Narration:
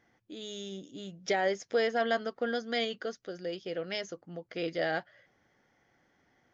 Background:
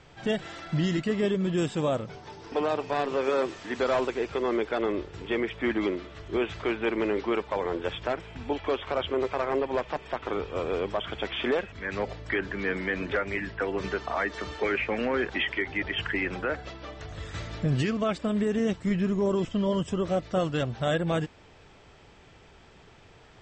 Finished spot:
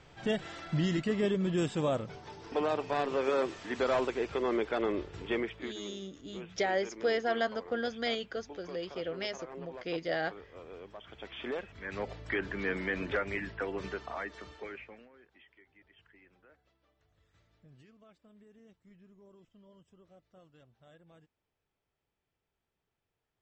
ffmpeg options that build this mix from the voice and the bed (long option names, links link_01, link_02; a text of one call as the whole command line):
ffmpeg -i stem1.wav -i stem2.wav -filter_complex "[0:a]adelay=5300,volume=-1.5dB[link_01];[1:a]volume=11dB,afade=type=out:start_time=5.33:duration=0.4:silence=0.177828,afade=type=in:start_time=11:duration=1.46:silence=0.188365,afade=type=out:start_time=13.21:duration=1.88:silence=0.0354813[link_02];[link_01][link_02]amix=inputs=2:normalize=0" out.wav